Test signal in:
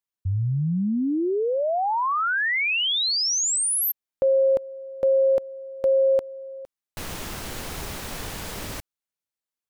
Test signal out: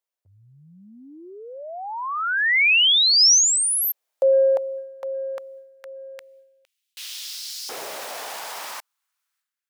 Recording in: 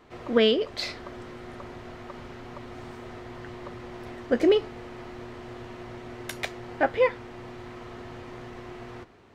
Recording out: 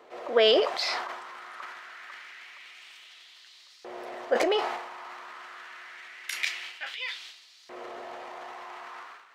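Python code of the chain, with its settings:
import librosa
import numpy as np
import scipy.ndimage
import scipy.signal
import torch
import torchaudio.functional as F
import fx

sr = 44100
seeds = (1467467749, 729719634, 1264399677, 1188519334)

y = fx.filter_lfo_highpass(x, sr, shape='saw_up', hz=0.26, low_hz=490.0, high_hz=4800.0, q=2.2)
y = fx.dynamic_eq(y, sr, hz=5200.0, q=4.1, threshold_db=-46.0, ratio=4.0, max_db=7)
y = fx.transient(y, sr, attack_db=-2, sustain_db=11)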